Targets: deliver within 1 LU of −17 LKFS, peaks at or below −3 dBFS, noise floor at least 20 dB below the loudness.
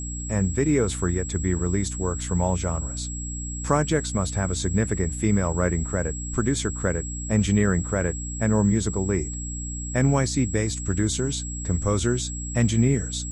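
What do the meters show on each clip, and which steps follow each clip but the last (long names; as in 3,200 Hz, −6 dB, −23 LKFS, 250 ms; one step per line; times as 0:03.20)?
mains hum 60 Hz; hum harmonics up to 300 Hz; level of the hum −30 dBFS; interfering tone 7,700 Hz; level of the tone −34 dBFS; integrated loudness −24.5 LKFS; sample peak −6.5 dBFS; target loudness −17.0 LKFS
→ hum removal 60 Hz, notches 5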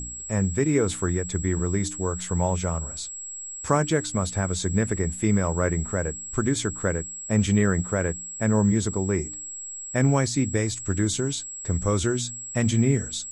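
mains hum none found; interfering tone 7,700 Hz; level of the tone −34 dBFS
→ notch filter 7,700 Hz, Q 30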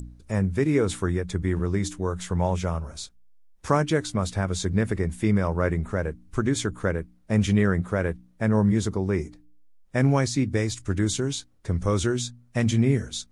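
interfering tone none found; integrated loudness −25.5 LKFS; sample peak −7.0 dBFS; target loudness −17.0 LKFS
→ level +8.5 dB
brickwall limiter −3 dBFS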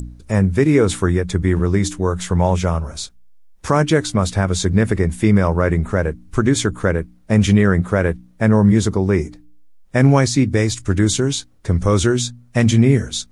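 integrated loudness −17.5 LKFS; sample peak −3.0 dBFS; background noise floor −49 dBFS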